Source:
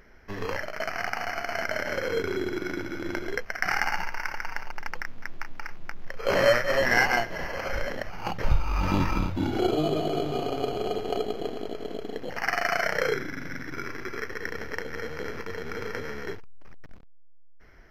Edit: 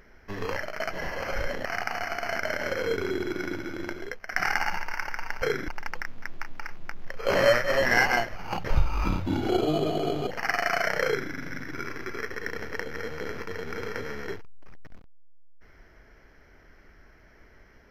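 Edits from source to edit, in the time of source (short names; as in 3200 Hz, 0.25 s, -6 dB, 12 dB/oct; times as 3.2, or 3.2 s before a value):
2.83–3.55 fade out, to -9.5 dB
7.28–8.02 move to 0.91
8.78–9.14 cut
10.37–12.26 cut
13.04–13.3 copy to 4.68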